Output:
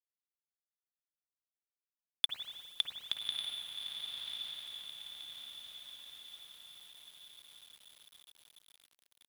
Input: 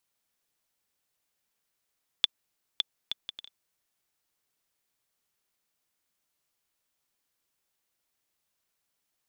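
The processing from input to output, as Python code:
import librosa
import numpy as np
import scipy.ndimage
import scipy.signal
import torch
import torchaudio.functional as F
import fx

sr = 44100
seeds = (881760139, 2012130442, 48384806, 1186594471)

y = scipy.signal.sosfilt(scipy.signal.butter(4, 8900.0, 'lowpass', fs=sr, output='sos'), x)
y = fx.high_shelf(y, sr, hz=6700.0, db=-6.5)
y = 10.0 ** (-19.5 / 20.0) * np.tanh(y / 10.0 ** (-19.5 / 20.0))
y = fx.highpass(y, sr, hz=77.0, slope=6)
y = fx.peak_eq(y, sr, hz=360.0, db=-10.5, octaves=1.0)
y = fx.echo_diffused(y, sr, ms=1204, feedback_pct=52, wet_db=-3.0)
y = fx.rev_spring(y, sr, rt60_s=1.8, pass_ms=(51, 58), chirp_ms=70, drr_db=4.0)
y = fx.quant_dither(y, sr, seeds[0], bits=10, dither='none')
y = F.gain(torch.from_numpy(y), 2.5).numpy()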